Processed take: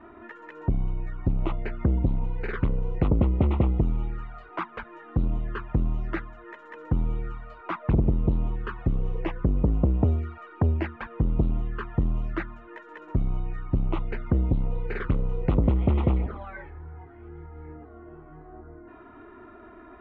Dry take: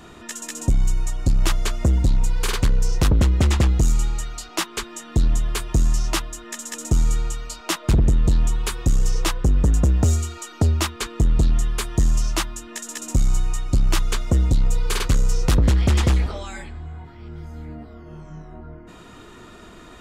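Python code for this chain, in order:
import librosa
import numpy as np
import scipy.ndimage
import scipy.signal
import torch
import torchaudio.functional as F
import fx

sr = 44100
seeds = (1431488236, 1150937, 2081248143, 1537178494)

y = fx.env_flanger(x, sr, rest_ms=3.4, full_db=-15.0)
y = scipy.signal.sosfilt(scipy.signal.butter(4, 1900.0, 'lowpass', fs=sr, output='sos'), y)
y = fx.low_shelf(y, sr, hz=75.0, db=-11.0)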